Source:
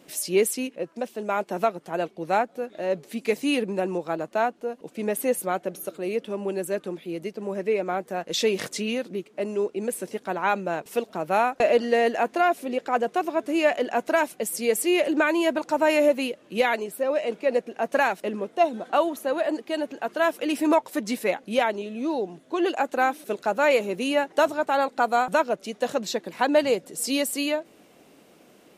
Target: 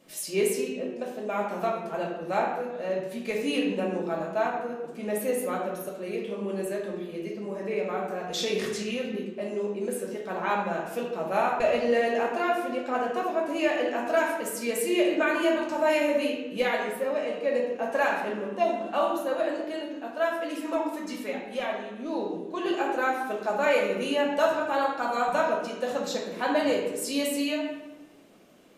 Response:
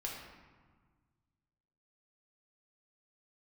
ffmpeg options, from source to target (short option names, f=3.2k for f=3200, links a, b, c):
-filter_complex "[0:a]asettb=1/sr,asplit=3[a][b][c];[a]atrim=end=19.724[d];[b]atrim=start=19.72:end=22.06,asetpts=PTS-STARTPTS,afade=t=in:d=0.004:c=qsin,afade=t=out:st=2.336:d=0.004:c=qsin,flanger=delay=2.3:depth=1.9:regen=43:speed=1.6:shape=triangular[e];[c]atrim=start=22.056[f];[d][e]acrossfade=d=0.004:c1=hsin:c2=qsin[g];[g][f]acrossfade=d=0.004:c1=qsin:c2=hsin[h];[1:a]atrim=start_sample=2205,asetrate=61740,aresample=44100[i];[h][i]afir=irnorm=-1:irlink=0"